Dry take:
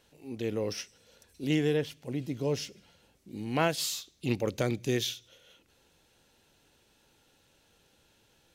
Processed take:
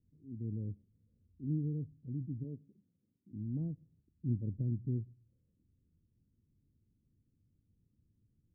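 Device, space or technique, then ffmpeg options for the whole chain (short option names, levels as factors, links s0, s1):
the neighbour's flat through the wall: -filter_complex "[0:a]lowpass=f=250:w=0.5412,lowpass=f=250:w=1.3066,equalizer=f=98:t=o:w=0.7:g=7,asplit=3[s0][s1][s2];[s0]afade=t=out:st=2.43:d=0.02[s3];[s1]highpass=230,afade=t=in:st=2.43:d=0.02,afade=t=out:st=3.31:d=0.02[s4];[s2]afade=t=in:st=3.31:d=0.02[s5];[s3][s4][s5]amix=inputs=3:normalize=0,volume=0.668"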